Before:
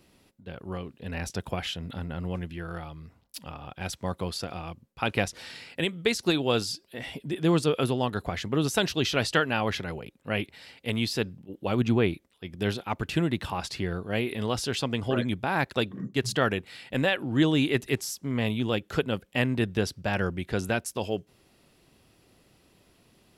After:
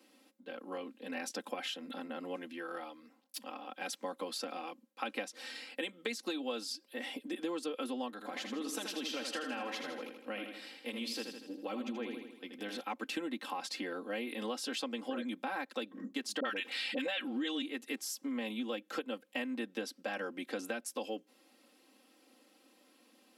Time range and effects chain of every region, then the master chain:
0:08.12–0:12.81: downward compressor 2.5 to 1, threshold −33 dBFS + repeating echo 80 ms, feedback 54%, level −7 dB
0:16.40–0:17.62: parametric band 3,200 Hz +10.5 dB 2.1 octaves + all-pass dispersion highs, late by 50 ms, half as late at 650 Hz + envelope flattener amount 50%
whole clip: Butterworth high-pass 230 Hz 48 dB per octave; comb filter 3.8 ms, depth 88%; downward compressor 6 to 1, threshold −30 dBFS; level −5 dB

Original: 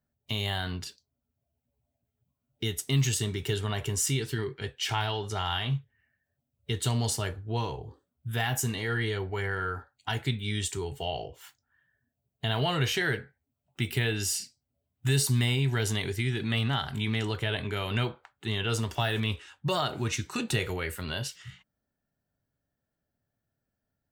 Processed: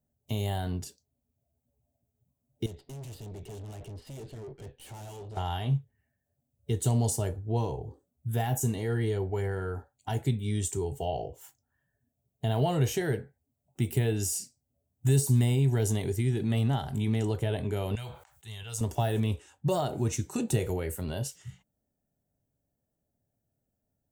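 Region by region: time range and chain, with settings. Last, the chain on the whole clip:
0:02.66–0:05.37: Chebyshev low-pass filter 4,800 Hz, order 8 + tube saturation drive 42 dB, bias 0.35
0:17.95–0:18.81: guitar amp tone stack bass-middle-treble 10-0-10 + level that may fall only so fast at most 81 dB per second
whole clip: de-essing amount 50%; flat-topped bell 2,300 Hz −13 dB 2.5 octaves; level +2.5 dB

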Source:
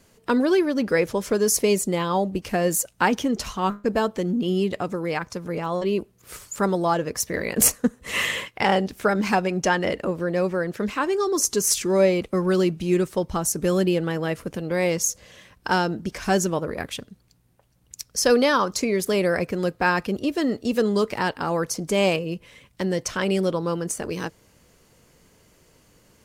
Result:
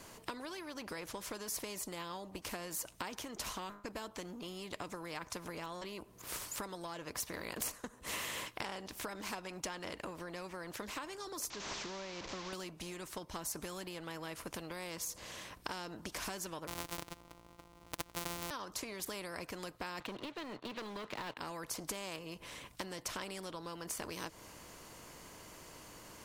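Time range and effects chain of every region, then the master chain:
0:11.50–0:12.53: linear delta modulator 32 kbit/s, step −27.5 dBFS + tuned comb filter 67 Hz, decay 1.8 s
0:16.67–0:18.51: samples sorted by size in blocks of 256 samples + notch filter 1,700 Hz, Q 10
0:20.00–0:21.38: Chebyshev band-pass filter 120–4,000 Hz, order 5 + leveller curve on the samples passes 2
whole clip: thirty-one-band graphic EQ 315 Hz +7 dB, 630 Hz +4 dB, 1,000 Hz +11 dB; downward compressor 10 to 1, threshold −28 dBFS; every bin compressed towards the loudest bin 2 to 1; level −1.5 dB

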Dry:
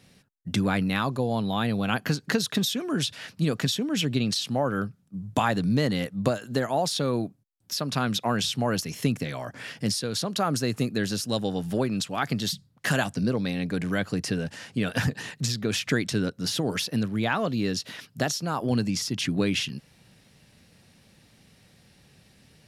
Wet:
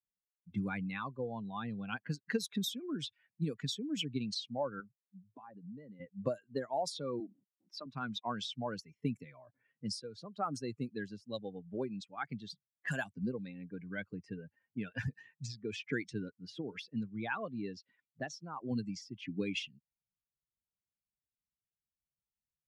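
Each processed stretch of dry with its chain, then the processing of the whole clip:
0:04.80–0:06.00: high-pass filter 120 Hz 24 dB per octave + downward compressor 4 to 1, threshold −29 dBFS
0:07.20–0:07.86: high-pass filter 200 Hz 24 dB per octave + envelope flattener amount 70%
whole clip: spectral dynamics exaggerated over time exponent 2; low-pass that shuts in the quiet parts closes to 640 Hz, open at −24.5 dBFS; low-shelf EQ 82 Hz −9.5 dB; level −5.5 dB

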